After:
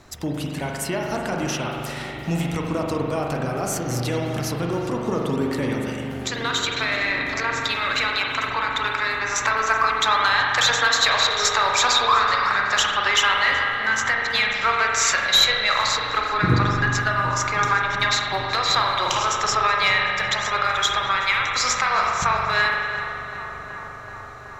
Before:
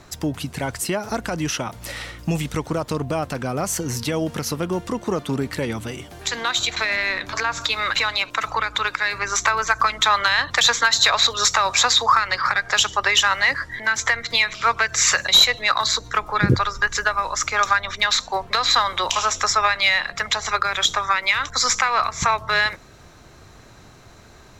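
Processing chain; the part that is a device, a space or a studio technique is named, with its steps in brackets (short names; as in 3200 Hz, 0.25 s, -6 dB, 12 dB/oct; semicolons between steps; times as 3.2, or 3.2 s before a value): dub delay into a spring reverb (darkening echo 0.377 s, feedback 84%, low-pass 3000 Hz, level -13 dB; spring tank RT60 2.2 s, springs 41 ms, chirp 65 ms, DRR -0.5 dB); gain -3.5 dB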